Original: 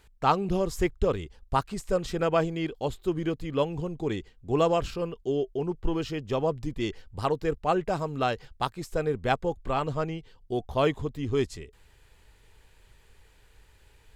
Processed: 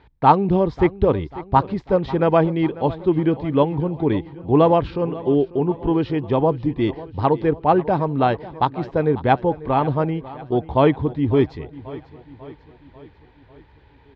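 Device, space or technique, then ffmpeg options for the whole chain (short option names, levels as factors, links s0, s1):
guitar cabinet: -af "lowpass=5100,highpass=78,equalizer=f=290:t=q:w=4:g=5,equalizer=f=890:t=q:w=4:g=7,equalizer=f=1300:t=q:w=4:g=-4,equalizer=f=2800:t=q:w=4:g=-7,lowpass=f=3700:w=0.5412,lowpass=f=3700:w=1.3066,lowshelf=f=200:g=6,aecho=1:1:544|1088|1632|2176|2720:0.133|0.0733|0.0403|0.0222|0.0122,volume=2.11"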